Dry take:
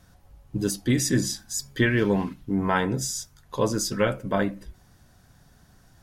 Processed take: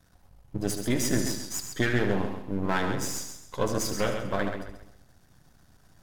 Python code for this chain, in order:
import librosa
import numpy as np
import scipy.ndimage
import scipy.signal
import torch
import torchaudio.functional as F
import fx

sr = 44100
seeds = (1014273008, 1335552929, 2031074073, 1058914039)

p1 = np.where(x < 0.0, 10.0 ** (-12.0 / 20.0) * x, x)
p2 = fx.hpss(p1, sr, part='harmonic', gain_db=-4)
p3 = p2 + fx.echo_single(p2, sr, ms=74, db=-9.5, dry=0)
y = fx.echo_warbled(p3, sr, ms=134, feedback_pct=33, rate_hz=2.8, cents=64, wet_db=-7.5)